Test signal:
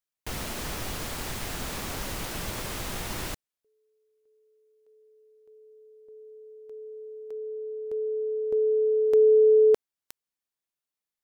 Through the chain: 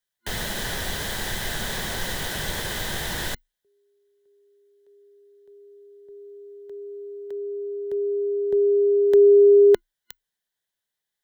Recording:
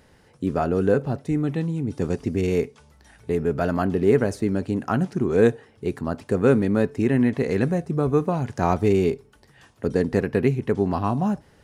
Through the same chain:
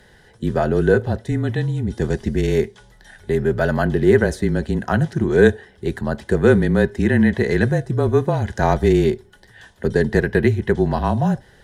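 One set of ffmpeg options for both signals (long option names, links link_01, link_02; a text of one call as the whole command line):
ffmpeg -i in.wav -af "superequalizer=6b=0.562:10b=0.631:11b=2:12b=0.708:13b=1.78,afreqshift=-28,volume=4.5dB" out.wav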